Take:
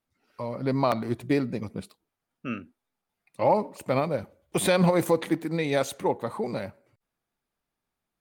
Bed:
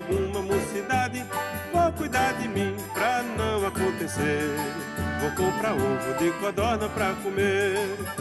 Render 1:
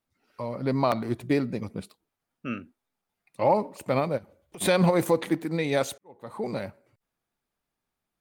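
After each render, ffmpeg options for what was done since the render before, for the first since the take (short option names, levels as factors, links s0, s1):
-filter_complex "[0:a]asplit=3[s0][s1][s2];[s0]afade=t=out:st=4.17:d=0.02[s3];[s1]acompressor=threshold=0.00631:ratio=4:attack=3.2:release=140:knee=1:detection=peak,afade=t=in:st=4.17:d=0.02,afade=t=out:st=4.6:d=0.02[s4];[s2]afade=t=in:st=4.6:d=0.02[s5];[s3][s4][s5]amix=inputs=3:normalize=0,asplit=2[s6][s7];[s6]atrim=end=5.98,asetpts=PTS-STARTPTS,afade=t=out:st=5.976:d=0.004:c=hsin[s8];[s7]atrim=start=5.98,asetpts=PTS-STARTPTS,afade=t=in:d=0.48:c=qua[s9];[s8][s9]concat=n=2:v=0:a=1"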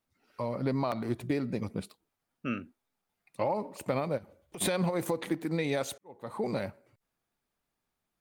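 -af "alimiter=limit=0.178:level=0:latency=1:release=340,acompressor=threshold=0.0501:ratio=6"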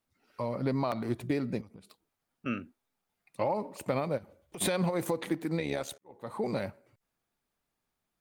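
-filter_complex "[0:a]asettb=1/sr,asplit=3[s0][s1][s2];[s0]atrim=end=1.614[s3];[s1]atrim=start=1.61:end=2.46,asetpts=PTS-STARTPTS,afade=t=in:d=0.004:c=qsin,afade=t=out:st=0.846:d=0.004:c=qsin,acompressor=threshold=0.00447:ratio=8:attack=3.2:release=140:knee=1:detection=peak[s4];[s2]atrim=start=2.456[s5];[s3][s4]acrossfade=d=0.004:c1=hsin:c2=qsin[s6];[s6][s5]acrossfade=d=0.004:c1=qsin:c2=hsin,asplit=3[s7][s8][s9];[s7]afade=t=out:st=5.58:d=0.02[s10];[s8]tremolo=f=71:d=0.71,afade=t=in:st=5.58:d=0.02,afade=t=out:st=6.12:d=0.02[s11];[s9]afade=t=in:st=6.12:d=0.02[s12];[s10][s11][s12]amix=inputs=3:normalize=0"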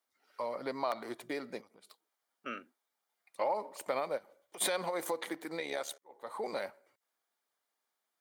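-af "highpass=540,bandreject=f=2600:w=8.8"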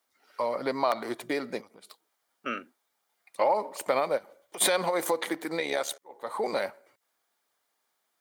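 -af "volume=2.51"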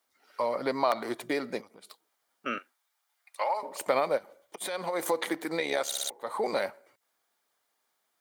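-filter_complex "[0:a]asettb=1/sr,asplit=3[s0][s1][s2];[s0]atrim=end=2.584[s3];[s1]atrim=start=2.58:end=3.63,asetpts=PTS-STARTPTS,afade=t=in:d=0.004:c=qsin,afade=t=out:st=1.046:d=0.004:c=qsin,highpass=880[s4];[s2]atrim=start=3.626[s5];[s3][s4]acrossfade=d=0.004:c1=hsin:c2=qsin[s6];[s6][s5]acrossfade=d=0.004:c1=qsin:c2=hsin,asplit=6[s7][s8][s9][s10][s11][s12];[s7]atrim=end=4.56,asetpts=PTS-STARTPTS,afade=t=out:st=4.556:d=0.004:c=hsin:silence=0.112202[s13];[s8]atrim=start=4.56:end=5.922,asetpts=PTS-STARTPTS,afade=t=in:d=0.62:silence=0.112202[s14];[s9]atrim=start=5.858:end=5.922[s15];[s10]atrim=start=5.858:end=5.922[s16];[s11]atrim=start=5.858:end=5.922[s17];[s12]atrim=start=6.098[s18];[s13][s14]concat=n=2:v=0:a=1[s19];[s19][s15]acrossfade=d=0.004:c1=hsin:c2=hsin[s20];[s20][s16]acrossfade=d=0.004:c1=hsin:c2=hsin[s21];[s21][s17]acrossfade=d=0.004:c1=hsin:c2=hsin[s22];[s22][s18]acrossfade=d=0.004:c1=hsin:c2=hsin"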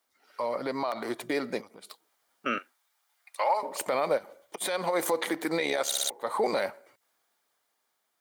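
-af "alimiter=limit=0.0944:level=0:latency=1:release=57,dynaudnorm=f=300:g=9:m=1.58"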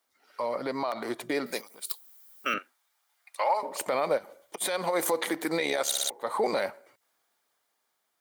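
-filter_complex "[0:a]asettb=1/sr,asplit=3[s0][s1][s2];[s0]atrim=end=1.464[s3];[s1]atrim=start=1.46:end=2.54,asetpts=PTS-STARTPTS,afade=t=in:d=0.004:c=qsin,afade=t=out:st=1.076:d=0.004:c=qsin,aemphasis=mode=production:type=riaa[s4];[s2]atrim=start=2.536[s5];[s3][s4]acrossfade=d=0.004:c1=hsin:c2=qsin[s6];[s6][s5]acrossfade=d=0.004:c1=qsin:c2=hsin,asettb=1/sr,asplit=3[s7][s8][s9];[s7]atrim=end=4.234[s10];[s8]atrim=start=4.23:end=5.92,asetpts=PTS-STARTPTS,afade=t=in:d=0.004:c=qsin,afade=t=out:st=1.686:d=0.004:c=qsin,equalizer=f=13000:t=o:w=1.6:g=3.5[s11];[s9]atrim=start=5.916[s12];[s10][s11]acrossfade=d=0.004:c1=hsin:c2=qsin[s13];[s13][s12]acrossfade=d=0.004:c1=qsin:c2=hsin"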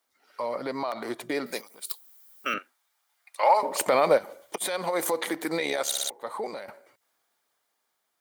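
-filter_complex "[0:a]asettb=1/sr,asplit=3[s0][s1][s2];[s0]atrim=end=3.434[s3];[s1]atrim=start=3.43:end=4.58,asetpts=PTS-STARTPTS,afade=t=in:d=0.004:c=qsin,afade=t=out:st=1.146:d=0.004:c=qsin,acontrast=62[s4];[s2]atrim=start=4.576[s5];[s3][s4]acrossfade=d=0.004:c1=hsin:c2=qsin[s6];[s6][s5]acrossfade=d=0.004:c1=qsin:c2=hsin,asplit=2[s7][s8];[s7]atrim=end=6.68,asetpts=PTS-STARTPTS,afade=t=out:st=5.99:d=0.69:silence=0.199526[s9];[s8]atrim=start=6.68,asetpts=PTS-STARTPTS,afade=t=in:d=0.004:c=hsin:silence=0.199526[s10];[s9][s10]concat=n=2:v=0:a=1"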